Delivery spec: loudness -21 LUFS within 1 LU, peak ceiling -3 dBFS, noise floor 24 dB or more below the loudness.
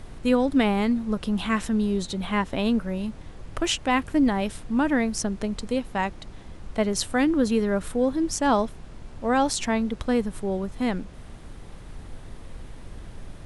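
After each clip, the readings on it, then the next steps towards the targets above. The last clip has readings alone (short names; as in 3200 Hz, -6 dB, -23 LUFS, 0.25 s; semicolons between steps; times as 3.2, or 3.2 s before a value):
noise floor -43 dBFS; noise floor target -49 dBFS; loudness -25.0 LUFS; peak -7.5 dBFS; loudness target -21.0 LUFS
-> noise print and reduce 6 dB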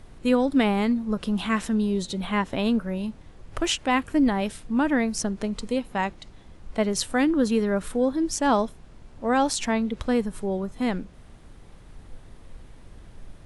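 noise floor -48 dBFS; noise floor target -49 dBFS
-> noise print and reduce 6 dB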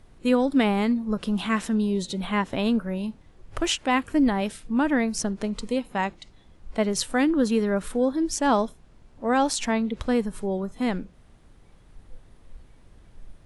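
noise floor -54 dBFS; loudness -25.0 LUFS; peak -7.5 dBFS; loudness target -21.0 LUFS
-> gain +4 dB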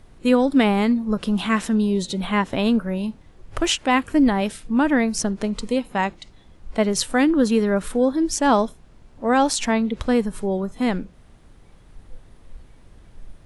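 loudness -21.0 LUFS; peak -3.5 dBFS; noise floor -50 dBFS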